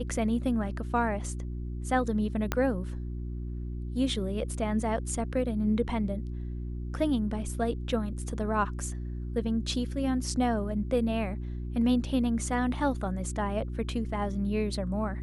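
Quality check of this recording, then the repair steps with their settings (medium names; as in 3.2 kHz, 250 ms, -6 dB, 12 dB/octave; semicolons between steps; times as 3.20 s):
hum 60 Hz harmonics 6 -35 dBFS
2.52 s: pop -12 dBFS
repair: de-click; de-hum 60 Hz, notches 6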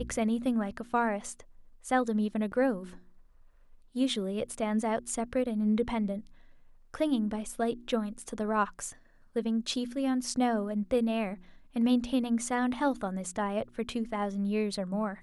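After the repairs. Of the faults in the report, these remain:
2.52 s: pop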